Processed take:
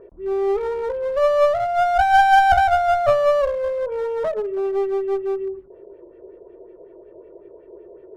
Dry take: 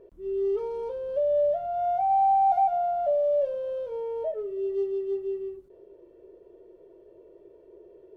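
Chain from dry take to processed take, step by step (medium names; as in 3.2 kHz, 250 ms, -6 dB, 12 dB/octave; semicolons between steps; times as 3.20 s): LFO low-pass sine 5.4 Hz 720–2400 Hz; one-sided clip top -29 dBFS, bottom -11 dBFS; trim +7 dB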